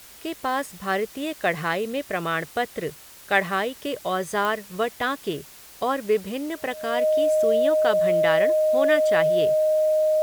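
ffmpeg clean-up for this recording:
-af "adeclick=t=4,bandreject=f=620:w=30,afwtdn=0.005"

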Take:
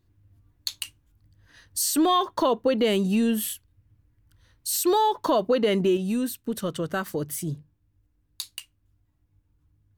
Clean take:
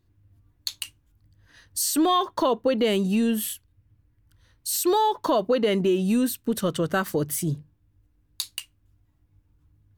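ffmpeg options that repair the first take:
-af "asetnsamples=n=441:p=0,asendcmd='5.97 volume volume 4dB',volume=1"

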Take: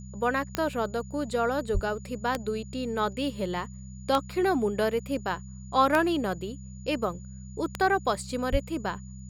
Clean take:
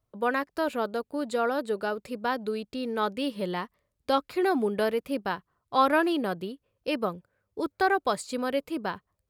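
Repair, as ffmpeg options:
-filter_complex "[0:a]adeclick=t=4,bandreject=f=64.3:t=h:w=4,bandreject=f=128.6:t=h:w=4,bandreject=f=192.9:t=h:w=4,bandreject=f=6900:w=30,asplit=3[s0][s1][s2];[s0]afade=t=out:st=1.73:d=0.02[s3];[s1]highpass=f=140:w=0.5412,highpass=f=140:w=1.3066,afade=t=in:st=1.73:d=0.02,afade=t=out:st=1.85:d=0.02[s4];[s2]afade=t=in:st=1.85:d=0.02[s5];[s3][s4][s5]amix=inputs=3:normalize=0,asplit=3[s6][s7][s8];[s6]afade=t=out:st=8.51:d=0.02[s9];[s7]highpass=f=140:w=0.5412,highpass=f=140:w=1.3066,afade=t=in:st=8.51:d=0.02,afade=t=out:st=8.63:d=0.02[s10];[s8]afade=t=in:st=8.63:d=0.02[s11];[s9][s10][s11]amix=inputs=3:normalize=0"

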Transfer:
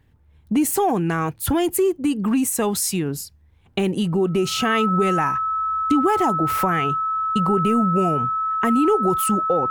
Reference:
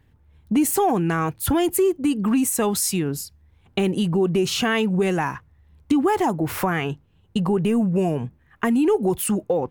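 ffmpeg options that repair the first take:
-af "bandreject=f=1300:w=30"

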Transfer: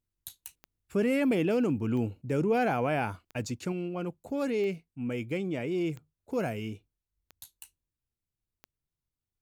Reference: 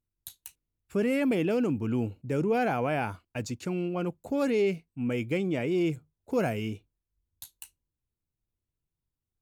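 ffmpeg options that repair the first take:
-af "adeclick=t=4,asetnsamples=n=441:p=0,asendcmd='3.72 volume volume 3.5dB',volume=1"

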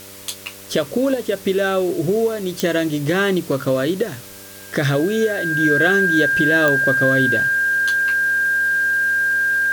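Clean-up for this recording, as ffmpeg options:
-af "adeclick=t=4,bandreject=f=98:t=h:w=4,bandreject=f=196:t=h:w=4,bandreject=f=294:t=h:w=4,bandreject=f=392:t=h:w=4,bandreject=f=490:t=h:w=4,bandreject=f=588:t=h:w=4,bandreject=f=1600:w=30,afwtdn=0.011"

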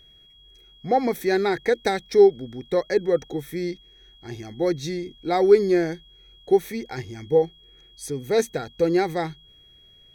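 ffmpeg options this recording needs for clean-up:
-af "bandreject=f=3300:w=30"

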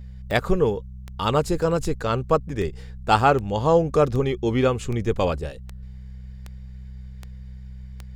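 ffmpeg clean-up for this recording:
-af "adeclick=t=4,bandreject=f=63.8:t=h:w=4,bandreject=f=127.6:t=h:w=4,bandreject=f=191.4:t=h:w=4"

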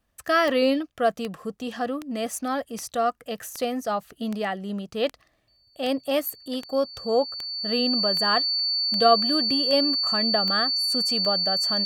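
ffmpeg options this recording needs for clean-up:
-af "adeclick=t=4,bandreject=f=4500:w=30"

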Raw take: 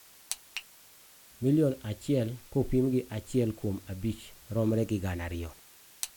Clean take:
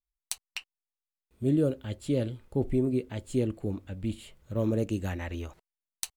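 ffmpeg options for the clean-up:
-af "afftdn=nr=30:nf=-56"

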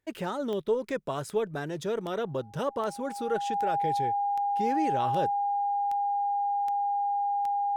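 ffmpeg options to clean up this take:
-af "adeclick=t=4,bandreject=f=810:w=30"

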